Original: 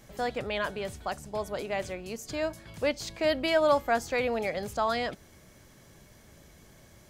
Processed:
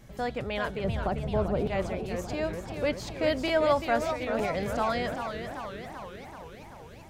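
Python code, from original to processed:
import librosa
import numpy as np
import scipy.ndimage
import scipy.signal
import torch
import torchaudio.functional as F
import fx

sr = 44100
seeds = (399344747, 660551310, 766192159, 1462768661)

y = fx.tilt_shelf(x, sr, db=9.5, hz=1100.0, at=(0.84, 1.67))
y = fx.over_compress(y, sr, threshold_db=-31.0, ratio=-0.5, at=(4.12, 4.78))
y = fx.bass_treble(y, sr, bass_db=6, treble_db=-4)
y = fx.buffer_crackle(y, sr, first_s=0.74, period_s=0.91, block=512, kind='repeat')
y = fx.echo_warbled(y, sr, ms=389, feedback_pct=66, rate_hz=2.8, cents=174, wet_db=-7.5)
y = y * 10.0 ** (-1.0 / 20.0)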